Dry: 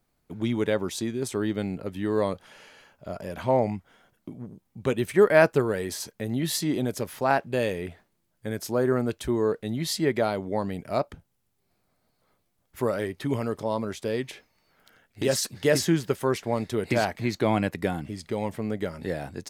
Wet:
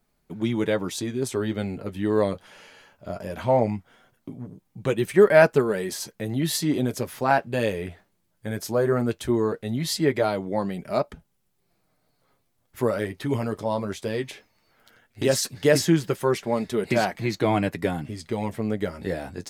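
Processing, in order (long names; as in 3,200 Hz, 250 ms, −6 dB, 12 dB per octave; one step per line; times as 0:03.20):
flanger 0.18 Hz, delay 4.6 ms, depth 6.2 ms, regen −35%
level +5.5 dB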